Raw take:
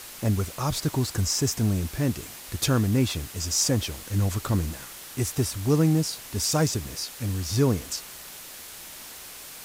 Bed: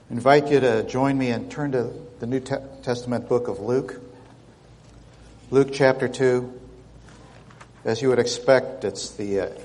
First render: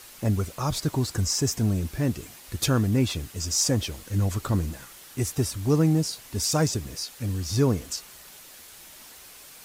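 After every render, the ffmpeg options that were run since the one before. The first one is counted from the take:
ffmpeg -i in.wav -af "afftdn=noise_reduction=6:noise_floor=-42" out.wav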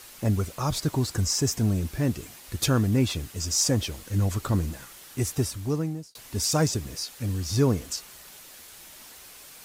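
ffmpeg -i in.wav -filter_complex "[0:a]asplit=2[link_01][link_02];[link_01]atrim=end=6.15,asetpts=PTS-STARTPTS,afade=type=out:start_time=5.36:duration=0.79[link_03];[link_02]atrim=start=6.15,asetpts=PTS-STARTPTS,afade=type=in:duration=0.004:curve=hsin[link_04];[link_03][link_04]concat=n=2:v=0:a=1" out.wav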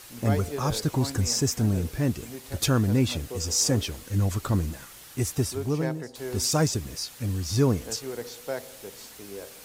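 ffmpeg -i in.wav -i bed.wav -filter_complex "[1:a]volume=-16dB[link_01];[0:a][link_01]amix=inputs=2:normalize=0" out.wav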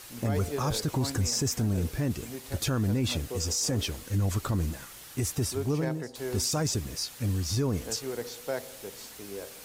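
ffmpeg -i in.wav -af "alimiter=limit=-20dB:level=0:latency=1:release=17" out.wav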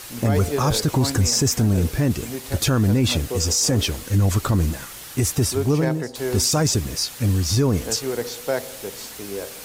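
ffmpeg -i in.wav -af "volume=9dB" out.wav

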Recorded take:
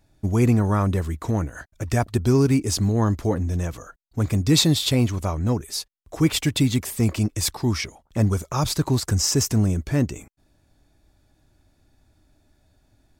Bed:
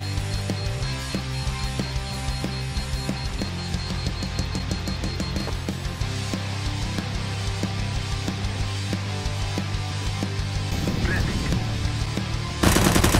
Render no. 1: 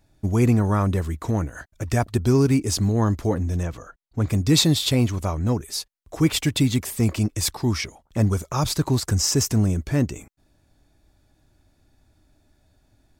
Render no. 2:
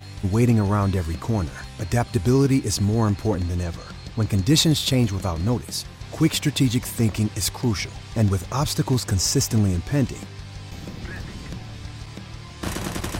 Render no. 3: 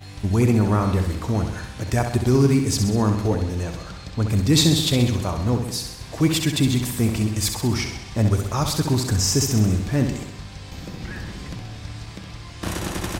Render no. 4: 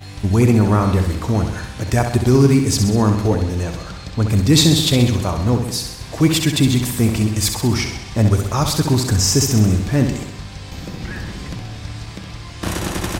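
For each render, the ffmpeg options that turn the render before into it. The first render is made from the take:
ffmpeg -i in.wav -filter_complex "[0:a]asettb=1/sr,asplit=3[link_01][link_02][link_03];[link_01]atrim=end=3.634[link_04];[link_02]atrim=start=3.63:end=4.29,asetpts=PTS-STARTPTS,afade=type=in:duration=0.004:curve=qsin,afade=type=out:start_time=0.656:duration=0.004:curve=qsin,highshelf=frequency=6600:gain=-11[link_05];[link_03]atrim=start=4.286[link_06];[link_04][link_05]acrossfade=duration=0.004:curve1=hsin:curve2=qsin[link_07];[link_07][link_06]acrossfade=duration=0.004:curve1=qsin:curve2=hsin" out.wav
ffmpeg -i in.wav -i bed.wav -filter_complex "[1:a]volume=-10.5dB[link_01];[0:a][link_01]amix=inputs=2:normalize=0" out.wav
ffmpeg -i in.wav -af "aecho=1:1:65|130|195|260|325|390|455|520:0.447|0.264|0.155|0.0917|0.0541|0.0319|0.0188|0.0111" out.wav
ffmpeg -i in.wav -af "volume=4.5dB,alimiter=limit=-2dB:level=0:latency=1" out.wav

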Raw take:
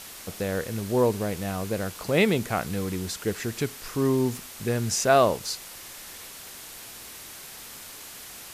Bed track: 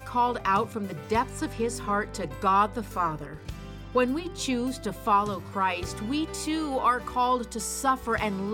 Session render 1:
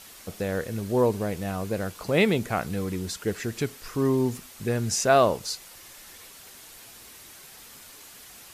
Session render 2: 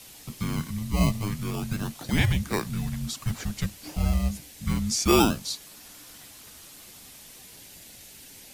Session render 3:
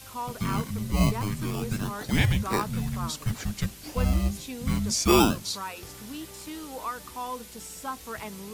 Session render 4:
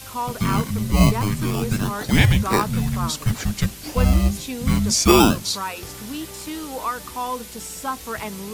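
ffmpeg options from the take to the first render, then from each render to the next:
ffmpeg -i in.wav -af "afftdn=noise_reduction=6:noise_floor=-43" out.wav
ffmpeg -i in.wav -filter_complex "[0:a]acrossover=split=130|460|1800[link_01][link_02][link_03][link_04];[link_03]acrusher=samples=18:mix=1:aa=0.000001:lfo=1:lforange=10.8:lforate=0.28[link_05];[link_01][link_02][link_05][link_04]amix=inputs=4:normalize=0,afreqshift=-320" out.wav
ffmpeg -i in.wav -i bed.wav -filter_complex "[1:a]volume=-10.5dB[link_01];[0:a][link_01]amix=inputs=2:normalize=0" out.wav
ffmpeg -i in.wav -af "volume=7.5dB,alimiter=limit=-2dB:level=0:latency=1" out.wav

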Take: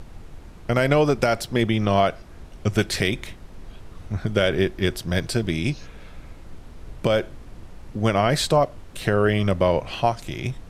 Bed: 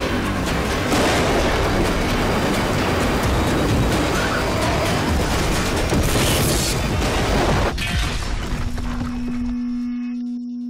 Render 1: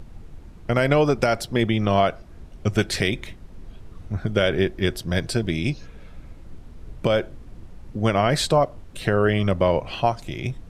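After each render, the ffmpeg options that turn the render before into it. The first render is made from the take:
ffmpeg -i in.wav -af "afftdn=noise_reduction=6:noise_floor=-43" out.wav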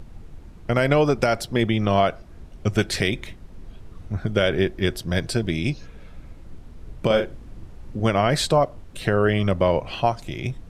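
ffmpeg -i in.wav -filter_complex "[0:a]asettb=1/sr,asplit=3[link_01][link_02][link_03];[link_01]atrim=end=7.064[link_04];[link_02]atrim=start=7.06:end=8.07,asetpts=PTS-STARTPTS,afade=type=in:duration=0.004:curve=qsin,afade=type=out:start_time=1.006:duration=0.004:curve=qsin,asplit=2[link_05][link_06];[link_06]adelay=41,volume=-6dB[link_07];[link_05][link_07]amix=inputs=2:normalize=0,atrim=end_sample=44541[link_08];[link_03]atrim=start=8.066[link_09];[link_04][link_08]acrossfade=duration=0.004:curve1=hsin:curve2=qsin[link_10];[link_10][link_09]acrossfade=duration=0.004:curve1=qsin:curve2=hsin" out.wav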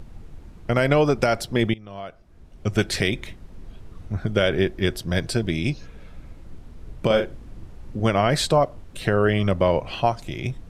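ffmpeg -i in.wav -filter_complex "[0:a]asplit=2[link_01][link_02];[link_01]atrim=end=1.74,asetpts=PTS-STARTPTS,afade=type=out:start_time=1.736:duration=0.004:curve=hsin:silence=0.0891251[link_03];[link_02]atrim=start=1.74,asetpts=PTS-STARTPTS,afade=type=in:duration=1.06:curve=qua:silence=0.0891251[link_04];[link_03][link_04]concat=n=2:v=0:a=1" out.wav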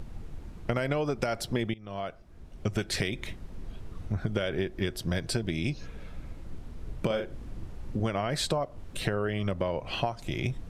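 ffmpeg -i in.wav -af "acompressor=threshold=-25dB:ratio=12" out.wav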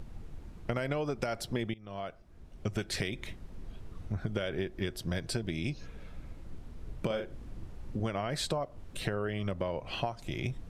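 ffmpeg -i in.wav -af "volume=-4dB" out.wav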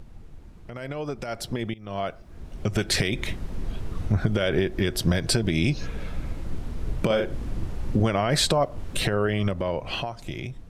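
ffmpeg -i in.wav -af "alimiter=level_in=1dB:limit=-24dB:level=0:latency=1:release=112,volume=-1dB,dynaudnorm=framelen=780:gausssize=5:maxgain=14dB" out.wav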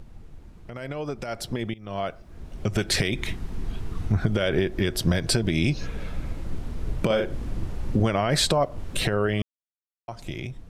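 ffmpeg -i in.wav -filter_complex "[0:a]asettb=1/sr,asplit=3[link_01][link_02][link_03];[link_01]atrim=end=3.144[link_04];[link_02]atrim=start=3.14:end=4.23,asetpts=PTS-STARTPTS,afade=type=in:duration=0.004:curve=qsin,afade=type=out:start_time=1.086:duration=0.004:curve=qsin,equalizer=frequency=560:width_type=o:width=0.24:gain=-10[link_05];[link_03]atrim=start=4.226[link_06];[link_04][link_05]acrossfade=duration=0.004:curve1=hsin:curve2=qsin[link_07];[link_07][link_06]acrossfade=duration=0.004:curve1=qsin:curve2=hsin,asplit=3[link_08][link_09][link_10];[link_08]atrim=end=9.42,asetpts=PTS-STARTPTS,afade=type=out:start_time=9.416:duration=0.004:curve=hsin[link_11];[link_09]atrim=start=9.42:end=10.08,asetpts=PTS-STARTPTS,volume=0[link_12];[link_10]atrim=start=10.08,asetpts=PTS-STARTPTS,afade=type=in:duration=0.004:curve=hsin[link_13];[link_11][link_12][link_13]concat=n=3:v=0:a=1" out.wav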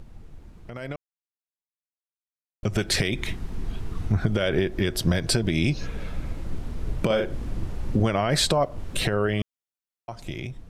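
ffmpeg -i in.wav -filter_complex "[0:a]asplit=3[link_01][link_02][link_03];[link_01]atrim=end=0.96,asetpts=PTS-STARTPTS,afade=type=out:start_time=0.956:duration=0.004:curve=hsin[link_04];[link_02]atrim=start=0.96:end=2.63,asetpts=PTS-STARTPTS,volume=0[link_05];[link_03]atrim=start=2.63,asetpts=PTS-STARTPTS,afade=type=in:duration=0.004:curve=hsin[link_06];[link_04][link_05][link_06]concat=n=3:v=0:a=1" out.wav

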